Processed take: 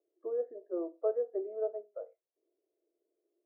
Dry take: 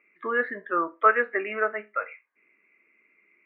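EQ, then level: Chebyshev band-pass 330–710 Hz, order 3; -4.0 dB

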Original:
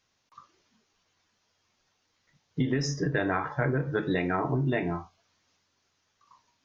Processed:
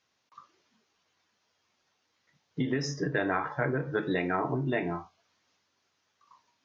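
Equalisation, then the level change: HPF 200 Hz 6 dB/oct; air absorption 50 m; 0.0 dB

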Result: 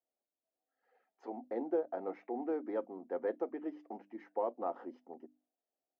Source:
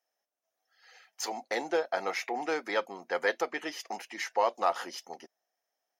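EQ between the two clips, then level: ladder band-pass 300 Hz, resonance 50%; notches 50/100/150/200/250/300 Hz; +9.0 dB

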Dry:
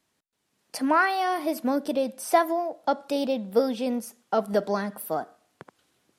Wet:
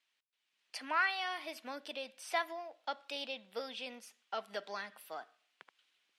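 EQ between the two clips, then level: band-pass 2800 Hz, Q 1.7; 0.0 dB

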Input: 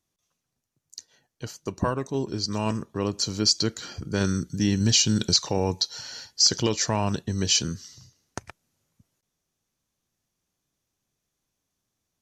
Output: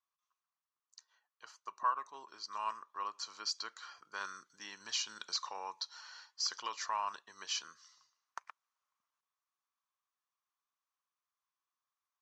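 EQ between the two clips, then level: band-pass 1100 Hz, Q 5.3; air absorption 66 m; differentiator; +17.5 dB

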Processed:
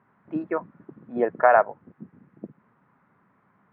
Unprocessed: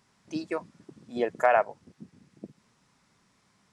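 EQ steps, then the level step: HPF 110 Hz 12 dB/oct; synth low-pass 1500 Hz, resonance Q 1.6; air absorption 460 m; +5.0 dB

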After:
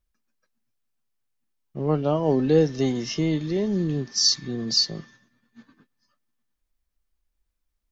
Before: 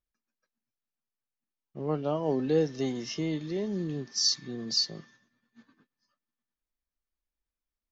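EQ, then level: low shelf 99 Hz +10.5 dB; +6.0 dB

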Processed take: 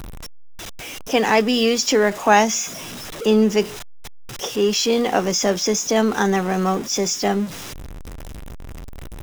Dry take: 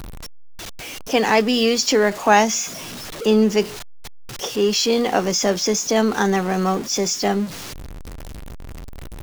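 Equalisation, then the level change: notch 4400 Hz, Q 9.6; 0.0 dB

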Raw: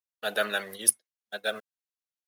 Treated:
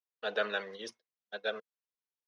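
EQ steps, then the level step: air absorption 260 m; speaker cabinet 140–7200 Hz, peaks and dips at 160 Hz +4 dB, 460 Hz +9 dB, 1000 Hz +6 dB, 6000 Hz +6 dB; high shelf 3100 Hz +10 dB; -6.0 dB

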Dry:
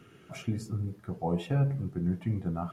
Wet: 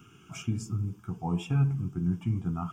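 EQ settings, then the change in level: high shelf 6400 Hz +8.5 dB; fixed phaser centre 2800 Hz, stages 8; +2.5 dB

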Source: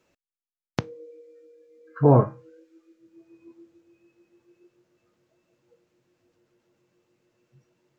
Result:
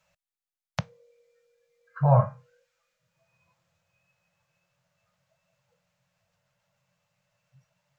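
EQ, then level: elliptic band-stop 180–570 Hz, stop band 40 dB; 0.0 dB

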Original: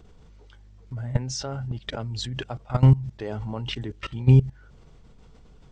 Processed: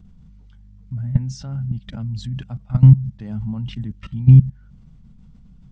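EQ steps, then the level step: resonant low shelf 280 Hz +11.5 dB, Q 3; -8.0 dB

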